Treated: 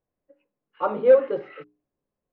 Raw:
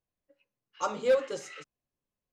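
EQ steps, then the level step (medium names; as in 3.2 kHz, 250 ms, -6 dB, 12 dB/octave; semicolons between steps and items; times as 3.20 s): Gaussian low-pass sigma 3.6 samples; peaking EQ 400 Hz +6.5 dB 2.1 oct; hum notches 60/120/180/240/300/360/420 Hz; +4.0 dB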